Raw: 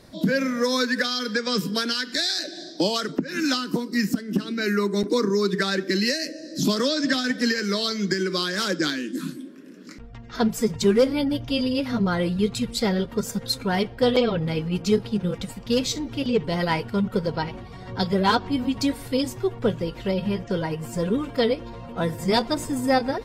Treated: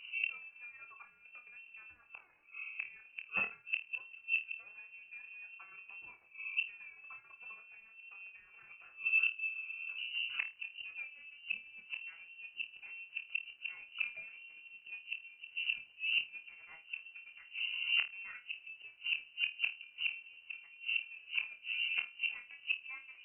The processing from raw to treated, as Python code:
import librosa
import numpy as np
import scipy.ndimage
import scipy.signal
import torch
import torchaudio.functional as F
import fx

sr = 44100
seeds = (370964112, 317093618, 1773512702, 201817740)

y = fx.wiener(x, sr, points=41)
y = fx.hum_notches(y, sr, base_hz=50, count=5)
y = fx.notch_comb(y, sr, f0_hz=330.0)
y = fx.gate_flip(y, sr, shuts_db=-24.0, range_db=-29)
y = fx.dmg_crackle(y, sr, seeds[0], per_s=560.0, level_db=-63.0)
y = fx.air_absorb(y, sr, metres=190.0)
y = fx.room_flutter(y, sr, wall_m=4.5, rt60_s=0.23)
y = fx.freq_invert(y, sr, carrier_hz=2900)
y = F.gain(torch.from_numpy(y), 2.0).numpy()